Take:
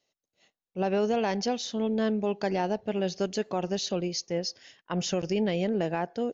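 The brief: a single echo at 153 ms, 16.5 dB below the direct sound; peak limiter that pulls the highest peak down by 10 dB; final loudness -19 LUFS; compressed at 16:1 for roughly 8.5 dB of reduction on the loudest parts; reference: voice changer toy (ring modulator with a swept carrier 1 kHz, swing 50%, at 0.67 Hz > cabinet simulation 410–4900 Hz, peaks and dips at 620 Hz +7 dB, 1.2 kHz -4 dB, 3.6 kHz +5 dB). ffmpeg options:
-af "acompressor=threshold=0.0282:ratio=16,alimiter=level_in=1.68:limit=0.0631:level=0:latency=1,volume=0.596,aecho=1:1:153:0.15,aeval=exprs='val(0)*sin(2*PI*1000*n/s+1000*0.5/0.67*sin(2*PI*0.67*n/s))':c=same,highpass=410,equalizer=f=620:t=q:w=4:g=7,equalizer=f=1200:t=q:w=4:g=-4,equalizer=f=3600:t=q:w=4:g=5,lowpass=f=4900:w=0.5412,lowpass=f=4900:w=1.3066,volume=12.6"

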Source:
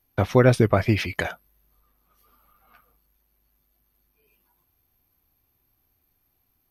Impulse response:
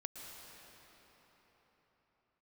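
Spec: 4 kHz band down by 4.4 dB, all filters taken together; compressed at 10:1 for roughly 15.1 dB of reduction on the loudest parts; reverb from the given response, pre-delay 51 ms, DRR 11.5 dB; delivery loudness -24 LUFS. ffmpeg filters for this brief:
-filter_complex "[0:a]equalizer=f=4000:t=o:g=-6,acompressor=threshold=0.0447:ratio=10,asplit=2[s0][s1];[1:a]atrim=start_sample=2205,adelay=51[s2];[s1][s2]afir=irnorm=-1:irlink=0,volume=0.335[s3];[s0][s3]amix=inputs=2:normalize=0,volume=2.99"

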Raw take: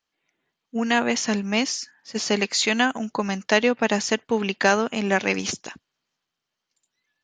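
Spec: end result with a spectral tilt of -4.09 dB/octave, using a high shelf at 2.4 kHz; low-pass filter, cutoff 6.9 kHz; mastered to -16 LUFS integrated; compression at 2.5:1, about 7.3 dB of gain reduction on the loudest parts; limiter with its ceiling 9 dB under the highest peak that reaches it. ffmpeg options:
-af "lowpass=6900,highshelf=f=2400:g=-7.5,acompressor=threshold=0.0501:ratio=2.5,volume=7.08,alimiter=limit=0.596:level=0:latency=1"

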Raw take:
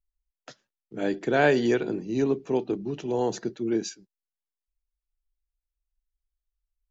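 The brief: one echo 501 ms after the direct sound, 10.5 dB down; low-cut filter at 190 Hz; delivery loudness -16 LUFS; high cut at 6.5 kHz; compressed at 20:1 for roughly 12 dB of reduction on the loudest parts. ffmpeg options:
-af "highpass=190,lowpass=6500,acompressor=threshold=0.0398:ratio=20,aecho=1:1:501:0.299,volume=8.41"

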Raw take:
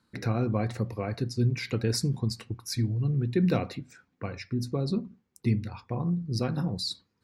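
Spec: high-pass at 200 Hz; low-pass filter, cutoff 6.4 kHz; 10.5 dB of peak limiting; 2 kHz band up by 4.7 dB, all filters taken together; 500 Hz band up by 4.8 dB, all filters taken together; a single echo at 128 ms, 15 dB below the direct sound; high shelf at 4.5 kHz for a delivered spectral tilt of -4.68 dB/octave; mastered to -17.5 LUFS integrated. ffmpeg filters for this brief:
-af "highpass=200,lowpass=6400,equalizer=f=500:t=o:g=6,equalizer=f=2000:t=o:g=4.5,highshelf=f=4500:g=5,alimiter=limit=0.0891:level=0:latency=1,aecho=1:1:128:0.178,volume=5.96"

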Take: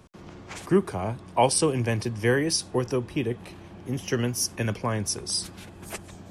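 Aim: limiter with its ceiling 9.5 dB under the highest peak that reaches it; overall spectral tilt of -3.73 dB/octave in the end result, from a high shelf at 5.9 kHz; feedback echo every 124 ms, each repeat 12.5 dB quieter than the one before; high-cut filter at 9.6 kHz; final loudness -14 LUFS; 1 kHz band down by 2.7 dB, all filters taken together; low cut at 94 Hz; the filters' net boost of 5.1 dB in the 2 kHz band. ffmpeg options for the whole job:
-af "highpass=94,lowpass=9600,equalizer=f=1000:t=o:g=-5,equalizer=f=2000:t=o:g=7,highshelf=f=5900:g=8,alimiter=limit=0.126:level=0:latency=1,aecho=1:1:124|248|372:0.237|0.0569|0.0137,volume=5.62"

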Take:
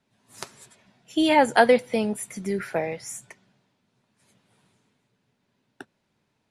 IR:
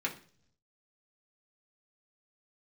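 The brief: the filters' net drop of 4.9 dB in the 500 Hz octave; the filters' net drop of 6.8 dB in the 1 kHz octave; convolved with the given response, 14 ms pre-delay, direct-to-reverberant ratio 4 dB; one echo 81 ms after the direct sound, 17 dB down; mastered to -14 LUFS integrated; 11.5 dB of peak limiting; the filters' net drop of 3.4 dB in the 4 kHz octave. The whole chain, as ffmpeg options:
-filter_complex "[0:a]equalizer=f=500:t=o:g=-3.5,equalizer=f=1000:t=o:g=-7.5,equalizer=f=4000:t=o:g=-4,alimiter=limit=0.112:level=0:latency=1,aecho=1:1:81:0.141,asplit=2[s0][s1];[1:a]atrim=start_sample=2205,adelay=14[s2];[s1][s2]afir=irnorm=-1:irlink=0,volume=0.355[s3];[s0][s3]amix=inputs=2:normalize=0,volume=5.96"

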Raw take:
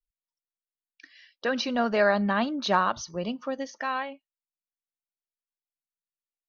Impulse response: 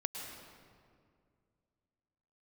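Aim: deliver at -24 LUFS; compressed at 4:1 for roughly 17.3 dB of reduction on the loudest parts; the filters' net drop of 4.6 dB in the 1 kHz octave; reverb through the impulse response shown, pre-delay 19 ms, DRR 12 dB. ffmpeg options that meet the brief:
-filter_complex "[0:a]equalizer=f=1000:t=o:g=-6,acompressor=threshold=0.00891:ratio=4,asplit=2[s0][s1];[1:a]atrim=start_sample=2205,adelay=19[s2];[s1][s2]afir=irnorm=-1:irlink=0,volume=0.224[s3];[s0][s3]amix=inputs=2:normalize=0,volume=7.94"

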